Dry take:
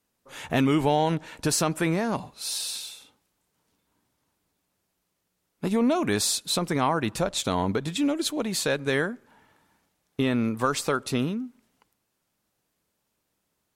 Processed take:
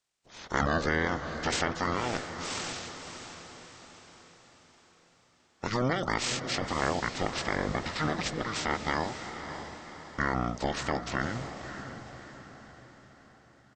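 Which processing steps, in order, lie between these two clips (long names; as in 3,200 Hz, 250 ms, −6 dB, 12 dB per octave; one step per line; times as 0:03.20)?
ceiling on every frequency bin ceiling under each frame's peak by 24 dB
pitch shifter −11 semitones
feedback delay with all-pass diffusion 581 ms, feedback 49%, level −9 dB
level −5 dB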